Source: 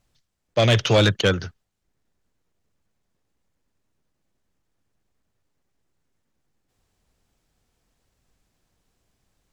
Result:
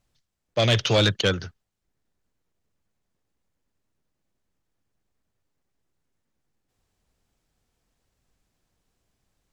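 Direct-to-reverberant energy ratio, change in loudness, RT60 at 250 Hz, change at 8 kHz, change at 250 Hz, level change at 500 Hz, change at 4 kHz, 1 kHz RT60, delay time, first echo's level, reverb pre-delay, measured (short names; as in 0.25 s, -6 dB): none, -2.5 dB, none, -1.0 dB, -3.5 dB, -3.5 dB, 0.0 dB, none, none, none, none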